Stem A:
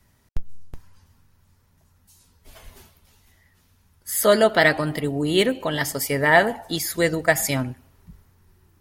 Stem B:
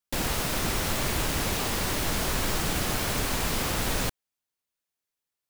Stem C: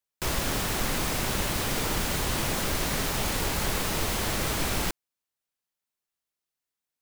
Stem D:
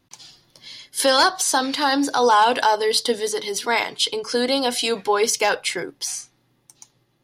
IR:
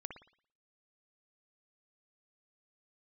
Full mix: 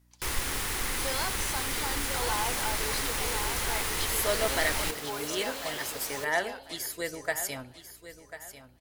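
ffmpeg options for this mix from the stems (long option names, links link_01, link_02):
-filter_complex "[0:a]highshelf=frequency=4400:gain=5.5,volume=-12.5dB,asplit=2[link_01][link_02];[link_02]volume=-13dB[link_03];[1:a]highpass=frequency=230:poles=1,asoftclip=type=tanh:threshold=-26dB,adelay=2150,volume=-7.5dB[link_04];[2:a]equalizer=frequency=630:width_type=o:width=0.33:gain=-10,equalizer=frequency=2000:width_type=o:width=0.33:gain=4,equalizer=frequency=10000:width_type=o:width=0.33:gain=6,volume=-3dB[link_05];[3:a]volume=-17.5dB,asplit=2[link_06][link_07];[link_07]volume=-5.5dB[link_08];[link_03][link_08]amix=inputs=2:normalize=0,aecho=0:1:1044|2088|3132|4176:1|0.29|0.0841|0.0244[link_09];[link_01][link_04][link_05][link_06][link_09]amix=inputs=5:normalize=0,equalizer=frequency=170:width_type=o:width=1.5:gain=-9.5,aeval=exprs='val(0)+0.000708*(sin(2*PI*60*n/s)+sin(2*PI*2*60*n/s)/2+sin(2*PI*3*60*n/s)/3+sin(2*PI*4*60*n/s)/4+sin(2*PI*5*60*n/s)/5)':channel_layout=same"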